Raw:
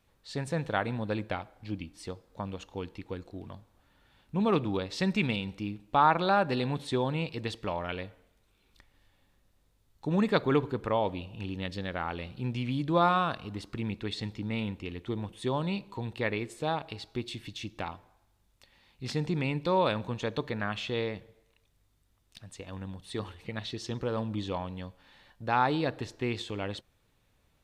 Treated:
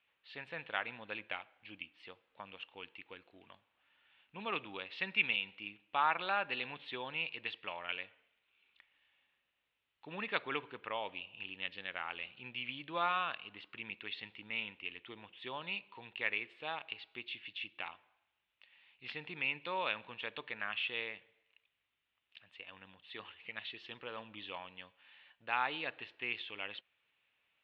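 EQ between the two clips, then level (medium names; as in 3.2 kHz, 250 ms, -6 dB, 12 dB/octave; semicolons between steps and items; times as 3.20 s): band-pass filter 2.8 kHz, Q 3.2; distance through air 470 m; +11.5 dB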